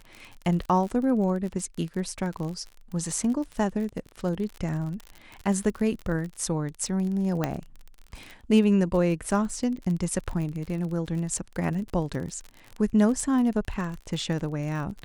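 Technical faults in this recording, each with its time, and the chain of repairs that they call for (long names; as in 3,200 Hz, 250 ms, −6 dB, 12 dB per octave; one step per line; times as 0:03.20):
surface crackle 38 per second −32 dBFS
0:07.44: click −12 dBFS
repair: click removal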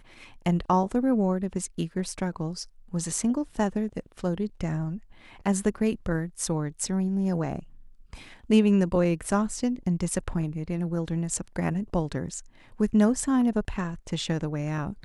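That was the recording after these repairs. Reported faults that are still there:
none of them is left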